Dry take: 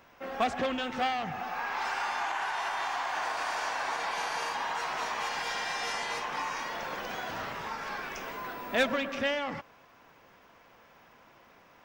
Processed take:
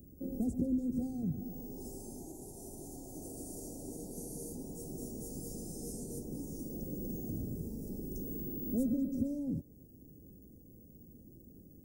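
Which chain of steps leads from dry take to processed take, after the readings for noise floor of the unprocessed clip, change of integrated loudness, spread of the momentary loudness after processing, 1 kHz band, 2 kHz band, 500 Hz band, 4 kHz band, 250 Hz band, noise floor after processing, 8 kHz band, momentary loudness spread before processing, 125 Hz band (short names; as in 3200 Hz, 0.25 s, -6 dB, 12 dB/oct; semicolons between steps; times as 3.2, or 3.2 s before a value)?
-59 dBFS, -7.0 dB, 22 LU, -30.5 dB, under -40 dB, -10.0 dB, -26.5 dB, +5.5 dB, -57 dBFS, -2.5 dB, 7 LU, +8.5 dB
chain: inverse Chebyshev band-stop 1200–2900 Hz, stop band 80 dB; bell 62 Hz +6 dB 1.1 oct; compressor 1.5:1, threshold -51 dBFS, peak gain reduction 7 dB; gain +11 dB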